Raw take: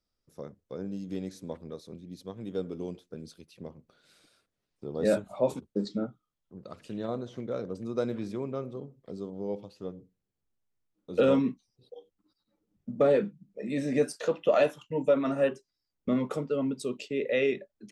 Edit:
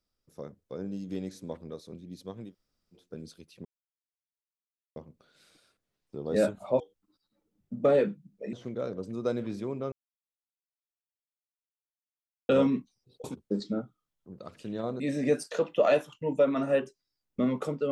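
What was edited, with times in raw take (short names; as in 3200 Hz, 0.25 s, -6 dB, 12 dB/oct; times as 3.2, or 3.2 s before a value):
2.47–2.99 room tone, crossfade 0.16 s
3.65 insert silence 1.31 s
5.49–7.25 swap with 11.96–13.69
8.64–11.21 mute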